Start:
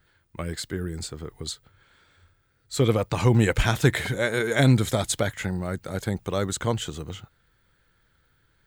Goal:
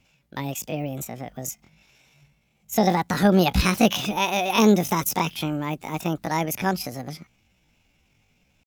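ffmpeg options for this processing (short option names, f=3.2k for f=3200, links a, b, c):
-af "asetrate=72056,aresample=44100,atempo=0.612027,volume=1.5dB"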